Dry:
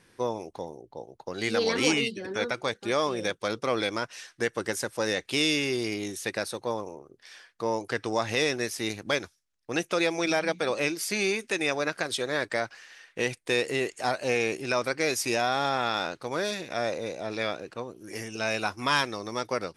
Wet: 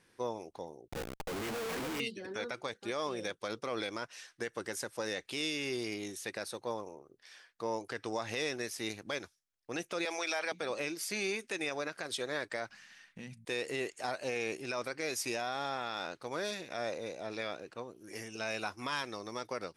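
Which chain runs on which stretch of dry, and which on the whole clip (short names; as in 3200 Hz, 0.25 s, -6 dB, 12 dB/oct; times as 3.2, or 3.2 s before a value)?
0.88–2 CVSD 16 kbps + high shelf 2400 Hz -4.5 dB + Schmitt trigger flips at -44.5 dBFS
10.05–10.52 HPF 630 Hz + fast leveller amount 50%
12.69–13.45 resonant low shelf 290 Hz +11 dB, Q 3 + de-hum 56.64 Hz, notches 4 + compressor 4:1, threshold -38 dBFS
whole clip: low shelf 190 Hz -4 dB; limiter -18 dBFS; gain -6.5 dB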